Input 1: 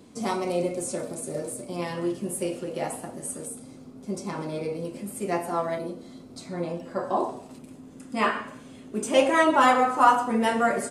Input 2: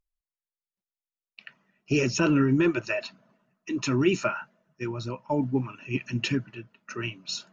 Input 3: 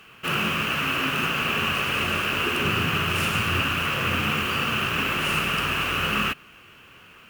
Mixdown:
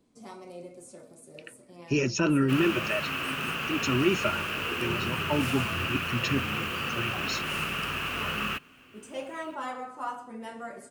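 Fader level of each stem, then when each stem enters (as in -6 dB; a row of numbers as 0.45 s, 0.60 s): -17.0 dB, -2.0 dB, -7.0 dB; 0.00 s, 0.00 s, 2.25 s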